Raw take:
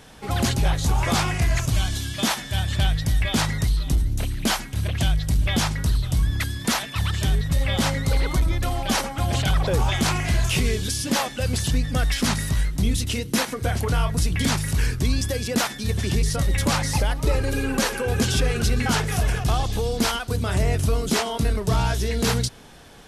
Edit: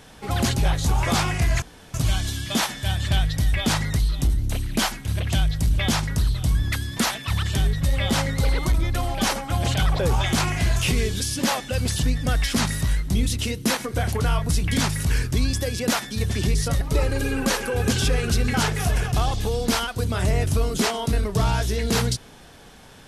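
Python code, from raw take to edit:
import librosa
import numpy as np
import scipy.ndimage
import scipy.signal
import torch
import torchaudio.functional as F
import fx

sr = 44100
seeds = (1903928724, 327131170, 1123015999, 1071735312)

y = fx.edit(x, sr, fx.insert_room_tone(at_s=1.62, length_s=0.32),
    fx.cut(start_s=16.49, length_s=0.64), tone=tone)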